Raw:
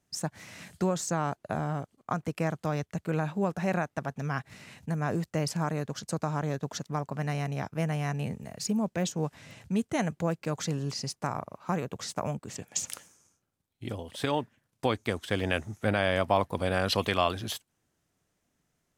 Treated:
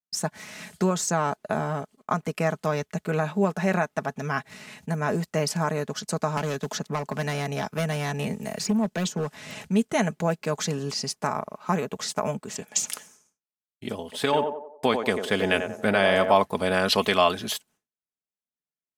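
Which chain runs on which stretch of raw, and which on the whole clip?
6.37–9.65 s: hard clipper -24 dBFS + three bands compressed up and down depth 70%
14.03–16.36 s: expander -55 dBFS + band-stop 5.8 kHz, Q 26 + band-passed feedback delay 91 ms, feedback 48%, band-pass 590 Hz, level -4.5 dB
whole clip: bass shelf 120 Hz -11.5 dB; comb 4.7 ms, depth 48%; expander -57 dBFS; trim +5.5 dB

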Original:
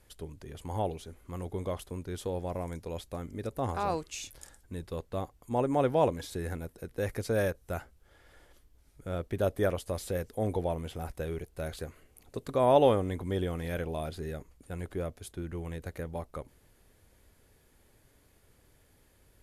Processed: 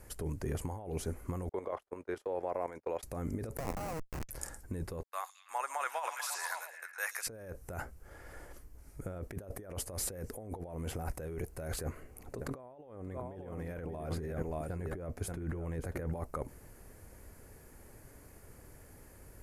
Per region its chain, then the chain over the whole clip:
1.49–3.03 s: gate -42 dBFS, range -28 dB + three-band isolator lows -22 dB, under 370 Hz, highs -15 dB, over 3.9 kHz + level held to a coarse grid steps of 11 dB
3.57–4.29 s: three-band isolator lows -23 dB, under 390 Hz, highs -15 dB, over 5.6 kHz + Schmitt trigger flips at -36.5 dBFS
5.03–7.27 s: gate -50 dBFS, range -33 dB + high-pass 1.1 kHz 24 dB/octave + repeats whose band climbs or falls 109 ms, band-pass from 5.7 kHz, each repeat -0.7 oct, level -2.5 dB
11.83–16.12 s: peaking EQ 11 kHz -6 dB 2.1 oct + delay 580 ms -12.5 dB
whole clip: peaking EQ 3.5 kHz -14 dB 0.74 oct; compressor with a negative ratio -42 dBFS, ratio -1; trim +2 dB

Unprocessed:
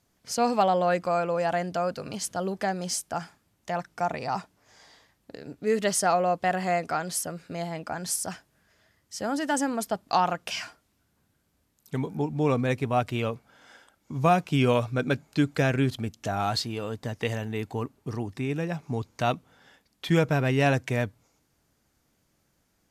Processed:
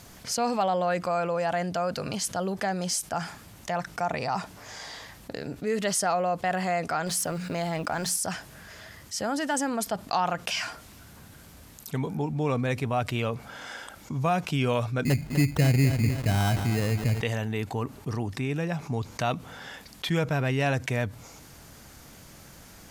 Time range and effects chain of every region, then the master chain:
7.06–8.17 s: companding laws mixed up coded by A + hum notches 60/120/180/240/300 Hz + level flattener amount 50%
15.05–17.21 s: tilt EQ -4.5 dB/octave + sample-rate reducer 2.3 kHz + bit-crushed delay 250 ms, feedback 35%, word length 6-bit, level -11 dB
whole clip: peaking EQ 330 Hz -3.5 dB 1.2 oct; level flattener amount 50%; trim -7.5 dB

